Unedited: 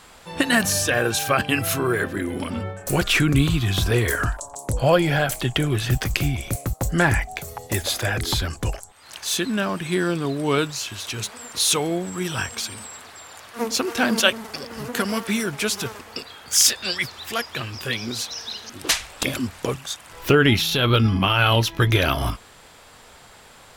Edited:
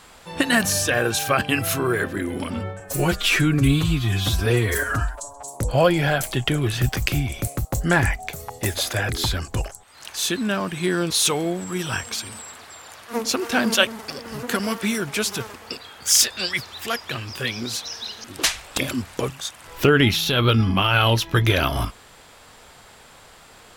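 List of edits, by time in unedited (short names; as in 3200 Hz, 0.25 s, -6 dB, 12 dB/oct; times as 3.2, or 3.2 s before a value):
2.8–4.63 stretch 1.5×
10.19–11.56 cut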